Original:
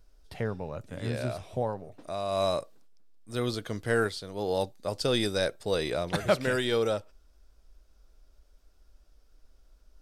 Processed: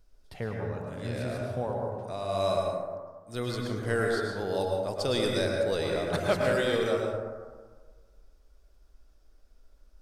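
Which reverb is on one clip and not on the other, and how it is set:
dense smooth reverb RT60 1.5 s, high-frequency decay 0.3×, pre-delay 95 ms, DRR −0.5 dB
level −3 dB

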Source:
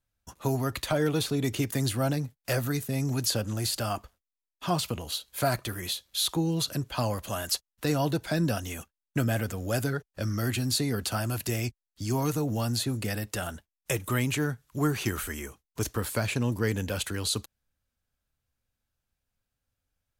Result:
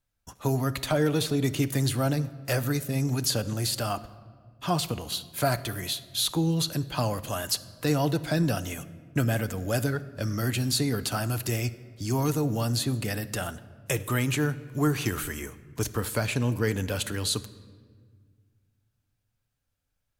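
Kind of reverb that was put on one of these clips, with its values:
rectangular room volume 2,300 cubic metres, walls mixed, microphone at 0.4 metres
level +1 dB

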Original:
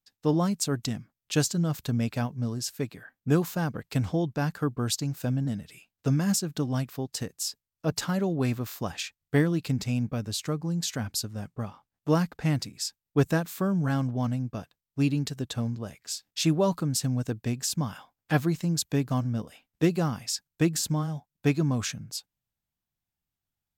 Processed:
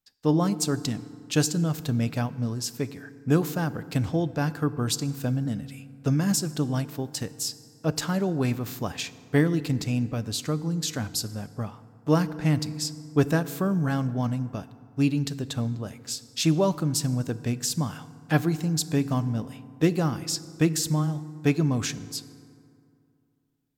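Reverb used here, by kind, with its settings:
feedback delay network reverb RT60 2.4 s, low-frequency decay 1.1×, high-frequency decay 0.5×, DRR 14.5 dB
level +1.5 dB

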